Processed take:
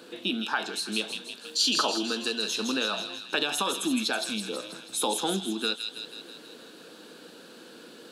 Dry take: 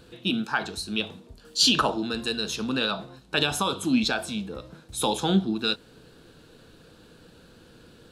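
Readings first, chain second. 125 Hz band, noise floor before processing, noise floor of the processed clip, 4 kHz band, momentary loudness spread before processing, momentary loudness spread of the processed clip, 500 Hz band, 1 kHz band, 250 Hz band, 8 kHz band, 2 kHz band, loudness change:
-11.5 dB, -54 dBFS, -49 dBFS, -1.5 dB, 12 LU, 22 LU, -2.0 dB, -2.5 dB, -5.0 dB, +1.0 dB, -1.5 dB, -2.5 dB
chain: compressor 2:1, threshold -36 dBFS, peak gain reduction 11 dB; HPF 230 Hz 24 dB/oct; thin delay 0.162 s, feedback 60%, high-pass 2600 Hz, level -4 dB; gain +5.5 dB

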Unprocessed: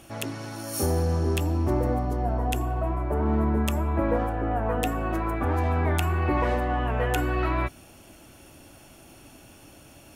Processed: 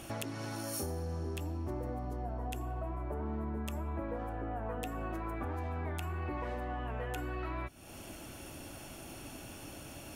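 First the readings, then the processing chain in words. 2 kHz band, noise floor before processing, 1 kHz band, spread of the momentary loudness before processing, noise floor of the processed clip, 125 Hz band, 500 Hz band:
-12.0 dB, -51 dBFS, -12.5 dB, 4 LU, -49 dBFS, -12.5 dB, -12.5 dB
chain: compressor 6:1, threshold -39 dBFS, peak gain reduction 18 dB; gain +2.5 dB

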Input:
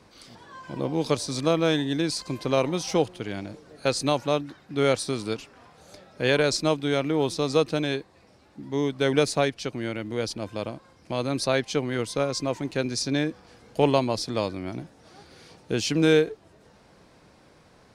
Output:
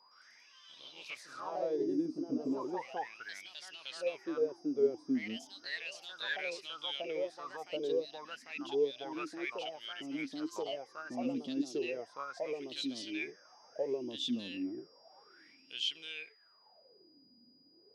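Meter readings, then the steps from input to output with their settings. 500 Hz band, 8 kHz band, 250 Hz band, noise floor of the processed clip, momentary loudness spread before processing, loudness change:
-12.0 dB, -19.0 dB, -11.0 dB, -65 dBFS, 12 LU, -12.0 dB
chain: high shelf 7400 Hz +11.5 dB; limiter -14.5 dBFS, peak gain reduction 9 dB; wah 0.33 Hz 240–3200 Hz, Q 13; whine 4900 Hz -68 dBFS; echoes that change speed 0.114 s, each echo +2 st, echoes 2; gain +3 dB

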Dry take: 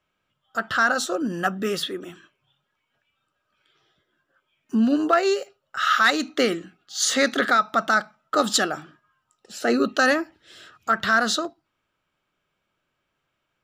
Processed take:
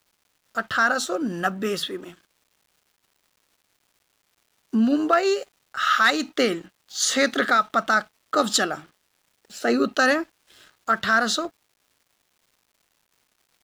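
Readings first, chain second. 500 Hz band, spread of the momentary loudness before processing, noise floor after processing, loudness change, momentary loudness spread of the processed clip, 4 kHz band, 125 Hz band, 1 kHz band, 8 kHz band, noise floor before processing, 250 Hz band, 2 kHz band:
-0.5 dB, 13 LU, -72 dBFS, 0.0 dB, 13 LU, -0.5 dB, -0.5 dB, 0.0 dB, -0.5 dB, -77 dBFS, -0.5 dB, 0.0 dB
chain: crossover distortion -49.5 dBFS; crackle 470/s -52 dBFS

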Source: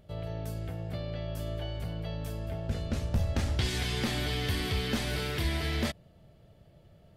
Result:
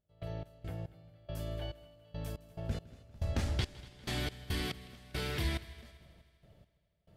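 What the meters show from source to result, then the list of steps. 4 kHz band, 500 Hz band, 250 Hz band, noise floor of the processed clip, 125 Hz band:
-7.5 dB, -7.0 dB, -8.0 dB, -76 dBFS, -6.5 dB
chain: step gate ".x.x..xx." 70 bpm -24 dB; multi-head echo 80 ms, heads second and third, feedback 52%, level -20 dB; gain -3.5 dB

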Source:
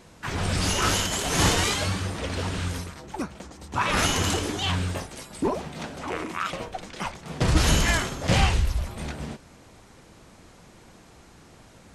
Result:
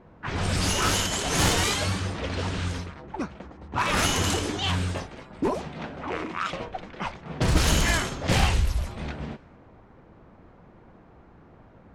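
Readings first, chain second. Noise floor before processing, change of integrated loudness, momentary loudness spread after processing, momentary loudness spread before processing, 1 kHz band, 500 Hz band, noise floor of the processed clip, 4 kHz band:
-52 dBFS, -0.5 dB, 14 LU, 14 LU, -0.5 dB, -0.5 dB, -53 dBFS, -0.5 dB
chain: one-sided fold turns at -17.5 dBFS; low-pass opened by the level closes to 1200 Hz, open at -21.5 dBFS

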